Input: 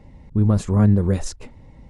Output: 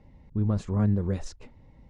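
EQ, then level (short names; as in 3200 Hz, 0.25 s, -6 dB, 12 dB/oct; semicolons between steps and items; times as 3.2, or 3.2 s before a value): LPF 5900 Hz 12 dB/oct; -8.5 dB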